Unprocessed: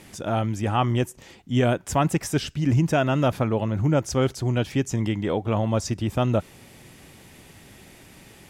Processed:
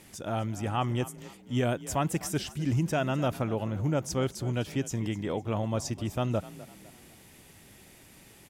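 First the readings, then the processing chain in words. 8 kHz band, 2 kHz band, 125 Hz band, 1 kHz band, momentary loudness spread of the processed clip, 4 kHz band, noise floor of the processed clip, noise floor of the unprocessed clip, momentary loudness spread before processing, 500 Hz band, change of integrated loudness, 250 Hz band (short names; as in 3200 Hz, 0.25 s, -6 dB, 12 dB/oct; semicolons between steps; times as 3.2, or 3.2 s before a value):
-3.5 dB, -6.5 dB, -7.0 dB, -7.0 dB, 5 LU, -5.5 dB, -55 dBFS, -50 dBFS, 5 LU, -7.0 dB, -7.0 dB, -7.0 dB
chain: high shelf 7600 Hz +7.5 dB; on a send: frequency-shifting echo 0.253 s, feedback 39%, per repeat +36 Hz, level -17 dB; on the sum: gain -7 dB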